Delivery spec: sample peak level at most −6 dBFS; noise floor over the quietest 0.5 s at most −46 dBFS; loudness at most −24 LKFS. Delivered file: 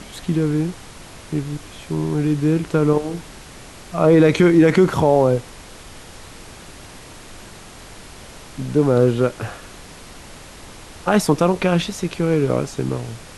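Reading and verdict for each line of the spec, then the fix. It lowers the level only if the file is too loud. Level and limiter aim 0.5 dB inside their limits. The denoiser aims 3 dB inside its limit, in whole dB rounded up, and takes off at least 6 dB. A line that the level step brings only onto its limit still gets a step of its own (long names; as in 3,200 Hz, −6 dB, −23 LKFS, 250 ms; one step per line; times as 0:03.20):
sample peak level −4.0 dBFS: out of spec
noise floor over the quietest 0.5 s −40 dBFS: out of spec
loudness −18.5 LKFS: out of spec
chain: broadband denoise 6 dB, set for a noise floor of −40 dBFS
level −6 dB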